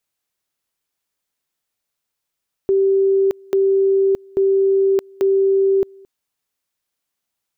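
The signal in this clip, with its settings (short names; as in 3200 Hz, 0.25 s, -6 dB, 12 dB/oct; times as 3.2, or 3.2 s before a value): two-level tone 389 Hz -12 dBFS, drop 28 dB, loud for 0.62 s, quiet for 0.22 s, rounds 4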